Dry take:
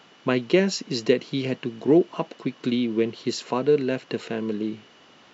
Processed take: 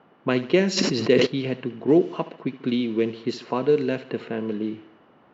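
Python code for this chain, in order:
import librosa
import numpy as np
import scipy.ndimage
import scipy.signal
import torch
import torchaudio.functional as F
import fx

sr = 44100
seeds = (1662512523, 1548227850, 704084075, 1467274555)

y = fx.env_lowpass(x, sr, base_hz=1100.0, full_db=-15.5)
y = fx.echo_feedback(y, sr, ms=71, feedback_pct=49, wet_db=-16.0)
y = fx.sustainer(y, sr, db_per_s=25.0, at=(0.76, 1.25), fade=0.02)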